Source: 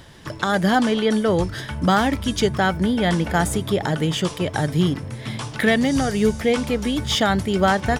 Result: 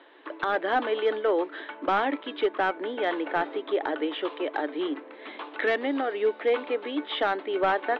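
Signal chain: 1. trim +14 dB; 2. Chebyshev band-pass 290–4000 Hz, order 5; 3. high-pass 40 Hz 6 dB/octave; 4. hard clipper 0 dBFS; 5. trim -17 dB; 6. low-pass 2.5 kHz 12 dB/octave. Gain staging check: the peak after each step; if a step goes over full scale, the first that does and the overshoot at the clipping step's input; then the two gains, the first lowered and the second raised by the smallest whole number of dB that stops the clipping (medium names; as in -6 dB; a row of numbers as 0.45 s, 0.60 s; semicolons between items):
+8.5 dBFS, +8.0 dBFS, +8.0 dBFS, 0.0 dBFS, -17.0 dBFS, -16.5 dBFS; step 1, 8.0 dB; step 1 +6 dB, step 5 -9 dB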